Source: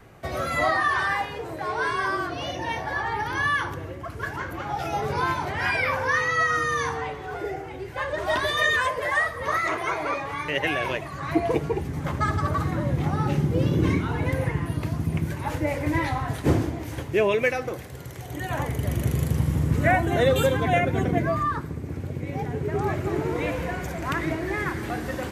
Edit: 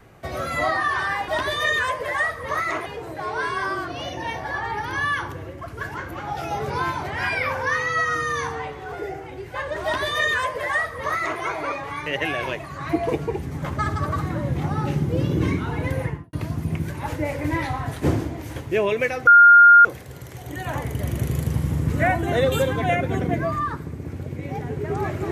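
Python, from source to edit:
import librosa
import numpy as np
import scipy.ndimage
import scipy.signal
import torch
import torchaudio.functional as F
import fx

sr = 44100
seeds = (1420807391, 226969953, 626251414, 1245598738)

y = fx.studio_fade_out(x, sr, start_s=14.44, length_s=0.31)
y = fx.edit(y, sr, fx.duplicate(start_s=8.25, length_s=1.58, to_s=1.28),
    fx.insert_tone(at_s=17.69, length_s=0.58, hz=1410.0, db=-6.5), tone=tone)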